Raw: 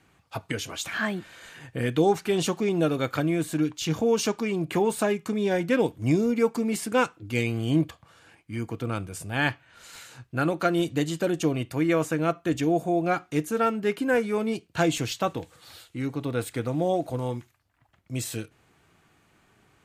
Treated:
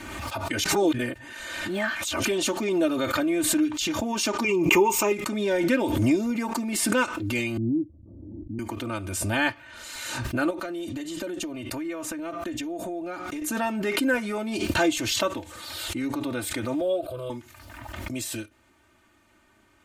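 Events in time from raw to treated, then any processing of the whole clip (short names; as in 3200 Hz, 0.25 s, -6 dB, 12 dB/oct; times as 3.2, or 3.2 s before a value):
0.64–2.25 reverse
4.44–5.12 ripple EQ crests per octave 0.76, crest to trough 15 dB
7.57–8.59 inverse Chebyshev low-pass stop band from 1800 Hz, stop band 80 dB
10.5–13.42 compressor, threshold -30 dBFS
16.81–17.3 fixed phaser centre 1300 Hz, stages 8
whole clip: comb 3.3 ms, depth 90%; dynamic EQ 170 Hz, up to -4 dB, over -35 dBFS, Q 0.94; backwards sustainer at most 31 dB/s; gain -2 dB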